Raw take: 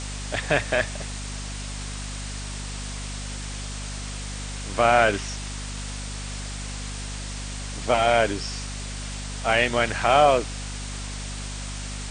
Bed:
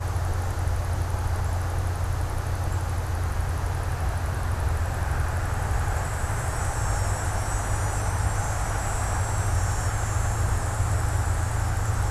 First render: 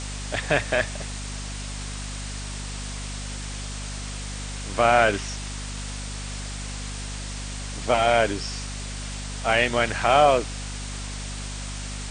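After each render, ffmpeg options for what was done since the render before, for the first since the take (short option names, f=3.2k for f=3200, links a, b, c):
-af anull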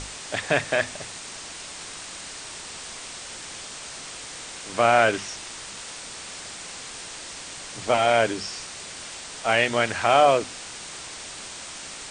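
-af "bandreject=f=50:t=h:w=6,bandreject=f=100:t=h:w=6,bandreject=f=150:t=h:w=6,bandreject=f=200:t=h:w=6,bandreject=f=250:t=h:w=6"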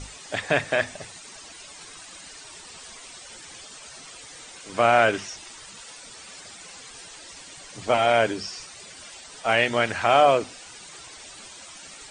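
-af "afftdn=nr=12:nf=-39"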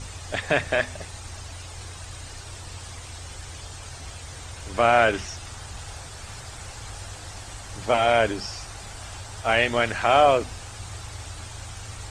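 -filter_complex "[1:a]volume=-14dB[a];[0:a][a]amix=inputs=2:normalize=0"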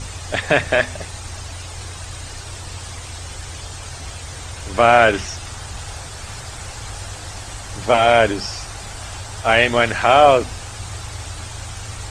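-af "volume=6.5dB,alimiter=limit=-1dB:level=0:latency=1"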